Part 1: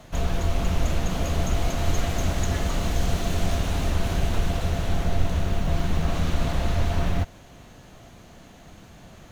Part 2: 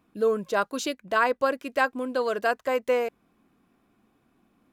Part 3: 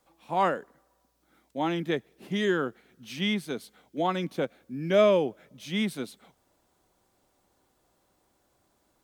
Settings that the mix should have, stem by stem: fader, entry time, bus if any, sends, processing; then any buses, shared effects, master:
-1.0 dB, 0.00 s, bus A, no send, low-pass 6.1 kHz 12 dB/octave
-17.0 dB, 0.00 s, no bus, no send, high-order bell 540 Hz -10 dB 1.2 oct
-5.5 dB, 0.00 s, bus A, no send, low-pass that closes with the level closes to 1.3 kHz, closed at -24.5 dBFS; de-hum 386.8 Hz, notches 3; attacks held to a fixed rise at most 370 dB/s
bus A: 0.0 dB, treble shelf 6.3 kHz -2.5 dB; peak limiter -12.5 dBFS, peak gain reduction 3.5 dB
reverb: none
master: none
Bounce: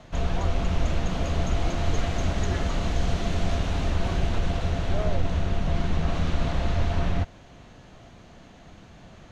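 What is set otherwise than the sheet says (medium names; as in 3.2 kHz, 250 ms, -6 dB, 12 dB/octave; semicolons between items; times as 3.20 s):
stem 2: muted; stem 3 -5.5 dB -> -13.0 dB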